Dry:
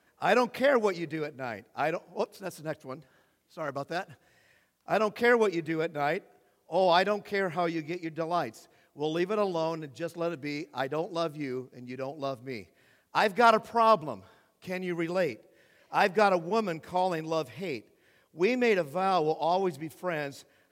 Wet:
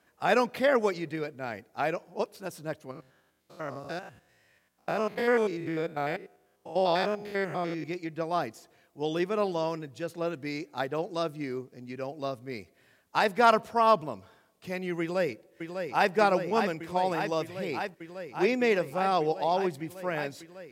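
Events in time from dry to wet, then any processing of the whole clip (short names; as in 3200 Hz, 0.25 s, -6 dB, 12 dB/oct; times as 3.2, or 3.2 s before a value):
2.91–7.84 stepped spectrum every 0.1 s
15–16.14 echo throw 0.6 s, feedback 85%, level -6.5 dB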